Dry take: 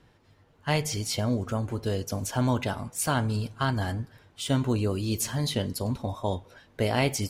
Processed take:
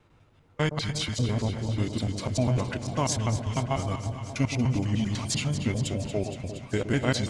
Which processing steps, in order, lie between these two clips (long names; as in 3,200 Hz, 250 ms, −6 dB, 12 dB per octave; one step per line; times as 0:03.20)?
slices reordered back to front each 99 ms, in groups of 2
formants moved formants −6 semitones
delay that swaps between a low-pass and a high-pass 117 ms, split 850 Hz, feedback 87%, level −10 dB